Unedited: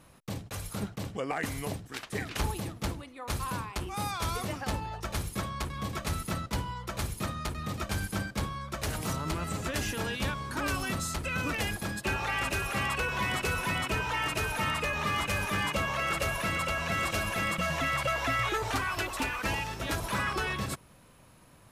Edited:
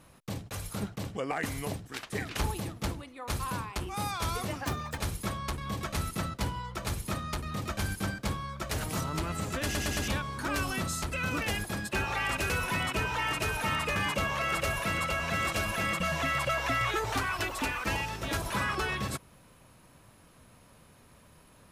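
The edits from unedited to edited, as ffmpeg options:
-filter_complex "[0:a]asplit=9[s0][s1][s2][s3][s4][s5][s6][s7][s8];[s0]atrim=end=4.654[s9];[s1]atrim=start=4.65:end=5.1,asetpts=PTS-STARTPTS,asetrate=60417,aresample=44100,atrim=end_sample=14485,asetpts=PTS-STARTPTS[s10];[s2]atrim=start=5.096:end=9.872[s11];[s3]atrim=start=9.758:end=9.872[s12];[s4]atrim=start=9.758:end=9.872[s13];[s5]atrim=start=9.758:end=9.872[s14];[s6]atrim=start=10.198:end=12.622[s15];[s7]atrim=start=13.448:end=14.912[s16];[s8]atrim=start=15.538[s17];[s9][s10]acrossfade=d=0.004:c1=hsin:c2=hsin[s18];[s18][s11]acrossfade=d=0.004:c1=hsin:c2=hsin[s19];[s19][s12]acrossfade=d=0.004:c1=hsin:c2=hsin[s20];[s20][s13]acrossfade=d=0.004:c1=hsin:c2=hsin[s21];[s21][s14]acrossfade=d=0.004:c1=hsin:c2=hsin[s22];[s22][s15]acrossfade=d=0.004:c1=hsin:c2=hsin[s23];[s23][s16]acrossfade=d=0.004:c1=hsin:c2=hsin[s24];[s24][s17]acrossfade=d=0.004:c1=hsin:c2=hsin"

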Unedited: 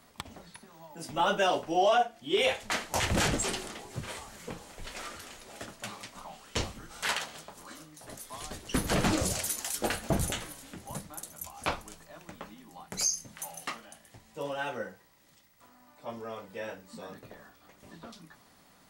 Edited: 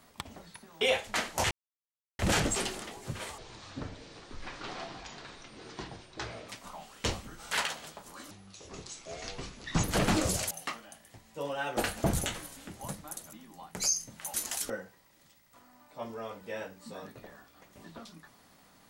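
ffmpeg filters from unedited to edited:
-filter_complex "[0:a]asplit=12[s0][s1][s2][s3][s4][s5][s6][s7][s8][s9][s10][s11];[s0]atrim=end=0.812[s12];[s1]atrim=start=2.368:end=3.07,asetpts=PTS-STARTPTS,afade=t=out:st=0.698:d=0.004:c=hsin,apad=pad_dur=0.68[s13];[s2]atrim=start=3.07:end=4.264,asetpts=PTS-STARTPTS,afade=t=in:d=0.004:c=hsin[s14];[s3]atrim=start=4.26:end=6,asetpts=PTS-STARTPTS,asetrate=24696,aresample=44100[s15];[s4]atrim=start=5.996:end=7.824[s16];[s5]atrim=start=7.82:end=8.8,asetpts=PTS-STARTPTS,asetrate=28224,aresample=44100,atrim=end_sample=67528,asetpts=PTS-STARTPTS[s17];[s6]atrim=start=8.796:end=9.472[s18];[s7]atrim=start=13.508:end=14.772[s19];[s8]atrim=start=9.828:end=11.392[s20];[s9]atrim=start=12.498:end=13.512[s21];[s10]atrim=start=9.468:end=9.832[s22];[s11]atrim=start=14.768[s23];[s13][s14]concat=n=2:v=0:a=1[s24];[s12][s24]acrossfade=d=0.004:c1=hsin:c2=hsin[s25];[s25][s15]acrossfade=d=0.004:c1=hsin:c2=hsin[s26];[s26][s16]acrossfade=d=0.004:c1=hsin:c2=hsin[s27];[s27][s17]acrossfade=d=0.004:c1=hsin:c2=hsin[s28];[s28][s18]acrossfade=d=0.004:c1=hsin:c2=hsin[s29];[s29][s19]acrossfade=d=0.004:c1=hsin:c2=hsin[s30];[s30][s20]acrossfade=d=0.004:c1=hsin:c2=hsin[s31];[s31][s21]acrossfade=d=0.004:c1=hsin:c2=hsin[s32];[s32][s22]acrossfade=d=0.004:c1=hsin:c2=hsin[s33];[s33][s23]acrossfade=d=0.004:c1=hsin:c2=hsin"

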